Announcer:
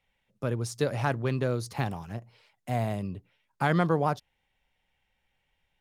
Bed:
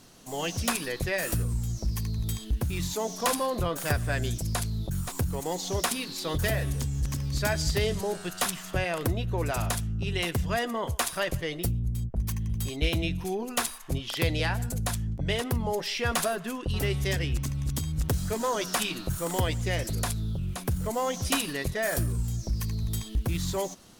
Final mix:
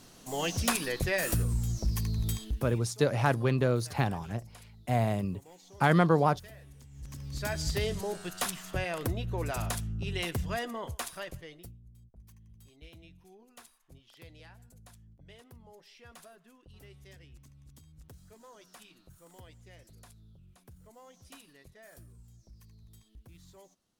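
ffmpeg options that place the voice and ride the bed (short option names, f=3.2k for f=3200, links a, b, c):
-filter_complex "[0:a]adelay=2200,volume=1.5dB[a];[1:a]volume=18dB,afade=t=out:st=2.28:d=0.54:silence=0.0749894,afade=t=in:st=6.89:d=0.8:silence=0.11885,afade=t=out:st=10.36:d=1.43:silence=0.0891251[b];[a][b]amix=inputs=2:normalize=0"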